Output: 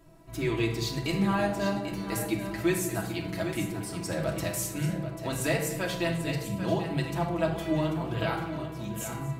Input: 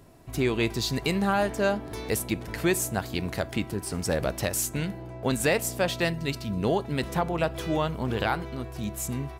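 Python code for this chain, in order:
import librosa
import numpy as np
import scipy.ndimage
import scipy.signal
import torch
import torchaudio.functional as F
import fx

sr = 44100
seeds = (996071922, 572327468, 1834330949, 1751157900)

y = x + 0.68 * np.pad(x, (int(6.1 * sr / 1000.0), 0))[:len(x)]
y = fx.echo_multitap(y, sr, ms=(234, 790), db=(-17.0, -10.0))
y = fx.room_shoebox(y, sr, seeds[0], volume_m3=2100.0, walls='furnished', distance_m=2.8)
y = F.gain(torch.from_numpy(y), -8.0).numpy()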